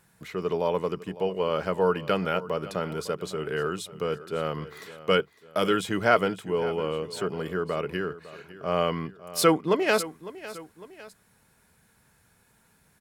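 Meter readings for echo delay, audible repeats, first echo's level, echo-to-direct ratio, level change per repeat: 554 ms, 2, -16.5 dB, -15.5 dB, -6.0 dB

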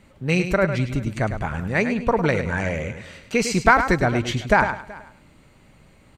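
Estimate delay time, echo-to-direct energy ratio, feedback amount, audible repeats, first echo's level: 104 ms, -8.5 dB, no regular repeats, 5, -9.0 dB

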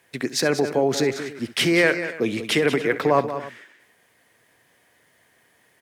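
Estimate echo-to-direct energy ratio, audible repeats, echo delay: -9.5 dB, 3, 67 ms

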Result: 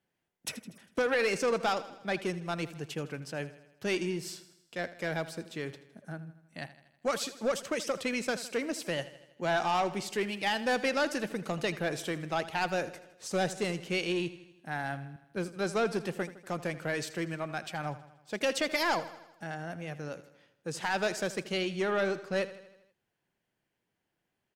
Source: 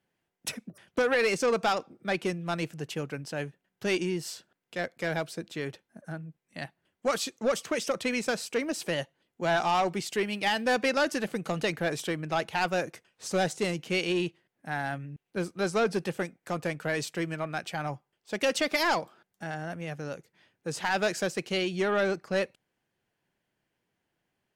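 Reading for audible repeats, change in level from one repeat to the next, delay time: 4, -5.0 dB, 80 ms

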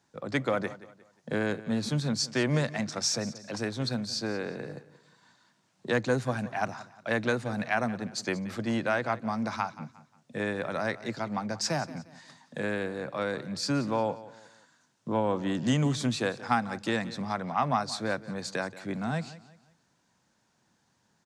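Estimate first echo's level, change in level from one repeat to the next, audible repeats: -17.0 dB, -9.0 dB, 2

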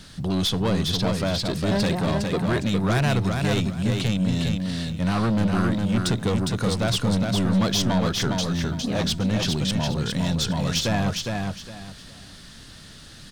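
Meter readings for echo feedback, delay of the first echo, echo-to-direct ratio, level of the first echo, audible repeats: 25%, 409 ms, -3.5 dB, -4.0 dB, 3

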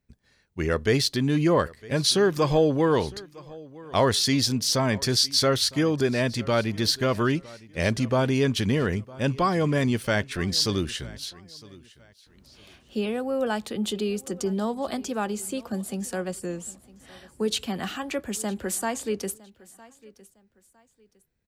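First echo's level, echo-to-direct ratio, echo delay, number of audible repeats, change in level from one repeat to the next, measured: -21.5 dB, -21.0 dB, 958 ms, 2, -10.5 dB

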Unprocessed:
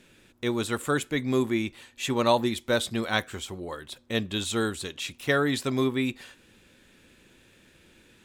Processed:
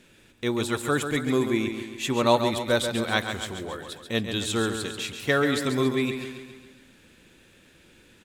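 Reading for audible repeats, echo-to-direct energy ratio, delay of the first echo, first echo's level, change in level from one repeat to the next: 6, -6.5 dB, 137 ms, -8.0 dB, -5.5 dB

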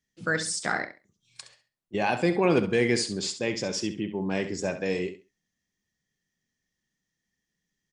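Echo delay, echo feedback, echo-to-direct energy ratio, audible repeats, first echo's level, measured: 67 ms, 21%, -11.0 dB, 2, -11.0 dB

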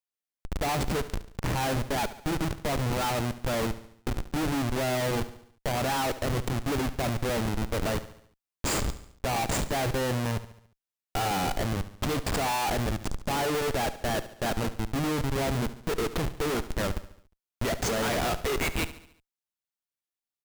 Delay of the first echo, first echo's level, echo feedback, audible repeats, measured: 71 ms, -14.5 dB, 51%, 4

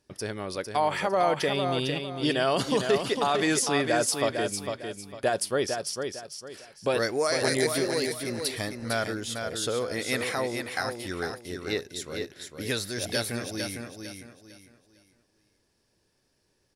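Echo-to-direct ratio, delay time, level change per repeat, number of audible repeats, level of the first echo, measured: -5.5 dB, 453 ms, -10.5 dB, 3, -6.0 dB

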